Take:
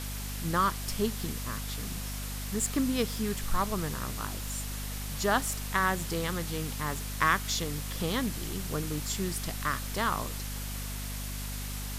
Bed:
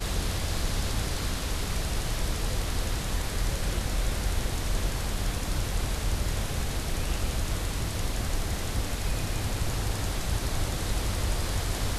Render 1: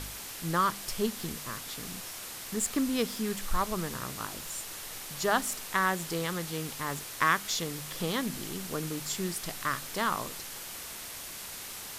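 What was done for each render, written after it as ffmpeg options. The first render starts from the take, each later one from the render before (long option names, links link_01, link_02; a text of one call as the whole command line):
ffmpeg -i in.wav -af "bandreject=frequency=50:width_type=h:width=4,bandreject=frequency=100:width_type=h:width=4,bandreject=frequency=150:width_type=h:width=4,bandreject=frequency=200:width_type=h:width=4,bandreject=frequency=250:width_type=h:width=4" out.wav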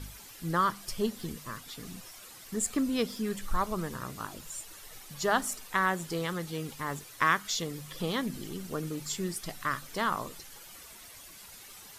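ffmpeg -i in.wav -af "afftdn=noise_reduction=11:noise_floor=-42" out.wav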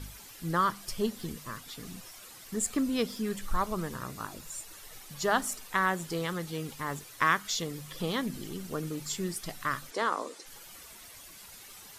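ffmpeg -i in.wav -filter_complex "[0:a]asettb=1/sr,asplit=3[link_01][link_02][link_03];[link_01]atrim=end=4.064[link_04];[link_02]atrim=start=4.06:end=4.72,asetpts=PTS-STARTPTS,afade=type=in:duration=0.004:curve=qsin,afade=type=out:start_time=0.656:duration=0.004:curve=qsin,bandreject=frequency=3100:width=11[link_05];[link_03]atrim=start=4.716[link_06];[link_04][link_05]acrossfade=duration=0.004:curve1=hsin:curve2=qsin[link_07];[link_07][link_06]acrossfade=duration=0.004:curve1=qsin:curve2=hsin,asplit=3[link_08][link_09][link_10];[link_08]afade=type=out:start_time=9.9:duration=0.02[link_11];[link_09]highpass=frequency=270:width=0.5412,highpass=frequency=270:width=1.3066,equalizer=frequency=280:width_type=q:width=4:gain=5,equalizer=frequency=490:width_type=q:width=4:gain=7,equalizer=frequency=2900:width_type=q:width=4:gain=-4,lowpass=frequency=9700:width=0.5412,lowpass=frequency=9700:width=1.3066,afade=type=in:start_time=9.9:duration=0.02,afade=type=out:start_time=10.45:duration=0.02[link_12];[link_10]afade=type=in:start_time=10.45:duration=0.02[link_13];[link_11][link_12][link_13]amix=inputs=3:normalize=0" out.wav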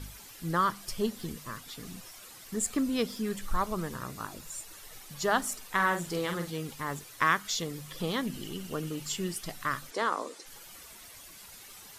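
ffmpeg -i in.wav -filter_complex "[0:a]asettb=1/sr,asplit=3[link_01][link_02][link_03];[link_01]atrim=end=5.704[link_04];[link_02]atrim=start=5.7:end=6.5,asetpts=PTS-STARTPTS,afade=type=in:duration=0.004:curve=qsin,afade=type=out:start_time=0.796:duration=0.004:curve=qsin,asplit=2[link_05][link_06];[link_06]adelay=46,volume=-6dB[link_07];[link_05][link_07]amix=inputs=2:normalize=0,atrim=end_sample=35280[link_08];[link_03]atrim=start=6.496[link_09];[link_04][link_08]acrossfade=duration=0.004:curve1=hsin:curve2=qsin[link_10];[link_10][link_09]acrossfade=duration=0.004:curve1=qsin:curve2=hsin,asettb=1/sr,asplit=3[link_11][link_12][link_13];[link_11]atrim=end=8.254[link_14];[link_12]atrim=start=8.25:end=9.42,asetpts=PTS-STARTPTS,afade=type=in:duration=0.004:curve=qsin,afade=type=out:start_time=1.166:duration=0.004:curve=qsin,equalizer=frequency=2900:width=7.2:gain=10.5[link_15];[link_13]atrim=start=9.416[link_16];[link_14][link_15]acrossfade=duration=0.004:curve1=hsin:curve2=qsin[link_17];[link_17][link_16]acrossfade=duration=0.004:curve1=qsin:curve2=hsin" out.wav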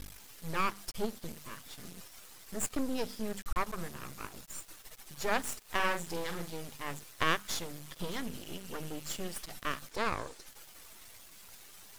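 ffmpeg -i in.wav -af "aeval=exprs='max(val(0),0)':channel_layout=same" out.wav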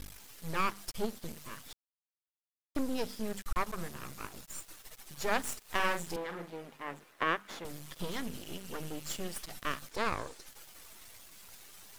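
ffmpeg -i in.wav -filter_complex "[0:a]asettb=1/sr,asplit=3[link_01][link_02][link_03];[link_01]atrim=end=6.164[link_04];[link_02]atrim=start=6.16:end=7.65,asetpts=PTS-STARTPTS,afade=type=in:duration=0.004:curve=qsin,afade=type=out:start_time=1.486:duration=0.004:curve=qsin,acrossover=split=180 2600:gain=0.141 1 0.178[link_05][link_06][link_07];[link_05][link_06][link_07]amix=inputs=3:normalize=0[link_08];[link_03]atrim=start=7.646[link_09];[link_04][link_08]acrossfade=duration=0.004:curve1=hsin:curve2=qsin[link_10];[link_10][link_09]acrossfade=duration=0.004:curve1=qsin:curve2=hsin,asplit=3[link_11][link_12][link_13];[link_11]atrim=end=1.73,asetpts=PTS-STARTPTS,afade=type=out:start_time=1.726:duration=0.004:curve=hsin[link_14];[link_12]atrim=start=1.73:end=2.75,asetpts=PTS-STARTPTS,volume=0[link_15];[link_13]atrim=start=2.75,asetpts=PTS-STARTPTS,afade=type=in:duration=0.004:curve=hsin[link_16];[link_14][link_15][link_16]concat=n=3:v=0:a=1" out.wav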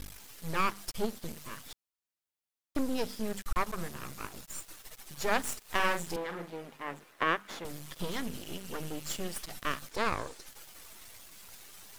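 ffmpeg -i in.wav -af "volume=2dB" out.wav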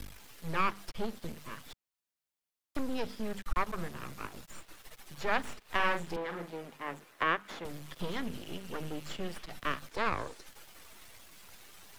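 ffmpeg -i in.wav -filter_complex "[0:a]acrossover=split=160|650|4000[link_01][link_02][link_03][link_04];[link_02]alimiter=level_in=9dB:limit=-24dB:level=0:latency=1,volume=-9dB[link_05];[link_04]acompressor=threshold=-56dB:ratio=6[link_06];[link_01][link_05][link_03][link_06]amix=inputs=4:normalize=0" out.wav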